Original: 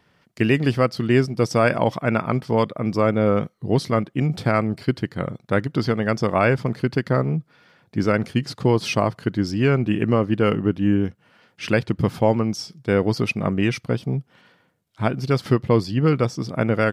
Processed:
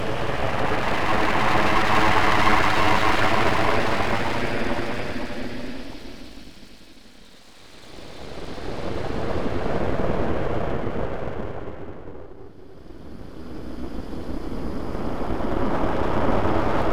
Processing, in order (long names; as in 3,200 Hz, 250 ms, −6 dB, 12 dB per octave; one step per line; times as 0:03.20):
extreme stretch with random phases 48×, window 0.10 s, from 0:11.70
high-pass filter 54 Hz 6 dB per octave
backwards echo 101 ms −4.5 dB
full-wave rectification
dynamic equaliser 1,100 Hz, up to +4 dB, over −51 dBFS, Q 0.96
level −2.5 dB